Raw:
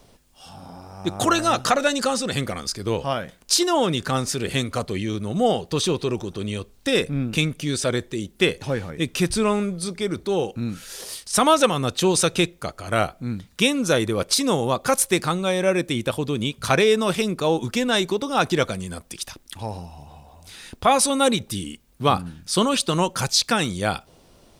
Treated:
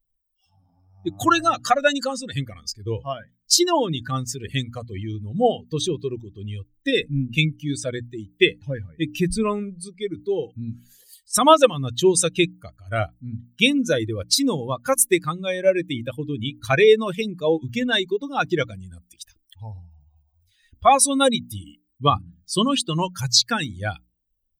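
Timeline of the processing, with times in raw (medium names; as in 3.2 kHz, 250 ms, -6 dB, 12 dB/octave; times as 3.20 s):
10.79–11.31 s: peaking EQ 5.6 kHz -6 dB 0.22 oct
whole clip: expander on every frequency bin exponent 2; hum notches 60/120/180/240/300 Hz; dynamic bell 200 Hz, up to -6 dB, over -48 dBFS, Q 7.2; trim +6 dB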